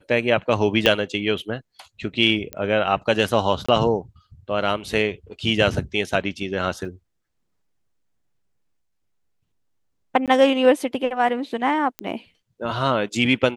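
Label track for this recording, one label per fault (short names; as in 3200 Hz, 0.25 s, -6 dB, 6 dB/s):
0.860000	0.860000	pop -4 dBFS
2.530000	2.530000	pop -13 dBFS
3.660000	3.690000	gap 25 ms
6.850000	6.850000	gap 2.4 ms
10.260000	10.280000	gap 17 ms
11.990000	11.990000	pop -12 dBFS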